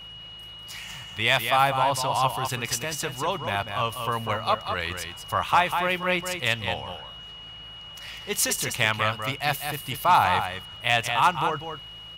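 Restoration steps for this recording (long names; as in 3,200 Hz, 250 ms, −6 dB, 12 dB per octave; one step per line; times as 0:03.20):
clipped peaks rebuilt −9.5 dBFS
hum removal 53.8 Hz, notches 3
notch filter 2,900 Hz, Q 30
echo removal 196 ms −7 dB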